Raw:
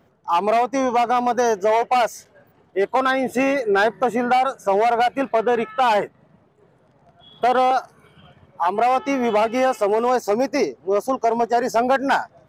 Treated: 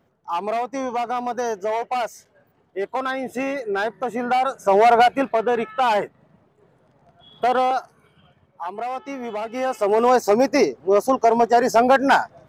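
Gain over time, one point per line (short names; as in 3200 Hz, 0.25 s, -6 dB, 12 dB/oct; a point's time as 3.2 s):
4.05 s -6 dB
4.95 s +5 dB
5.37 s -1.5 dB
7.54 s -1.5 dB
8.68 s -10 dB
9.42 s -10 dB
10.03 s +3 dB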